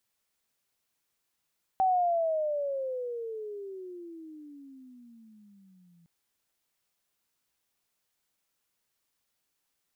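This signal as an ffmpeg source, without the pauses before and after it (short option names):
-f lavfi -i "aevalsrc='pow(10,(-21-37*t/4.26)/20)*sin(2*PI*768*4.26/(-26.5*log(2)/12)*(exp(-26.5*log(2)/12*t/4.26)-1))':d=4.26:s=44100"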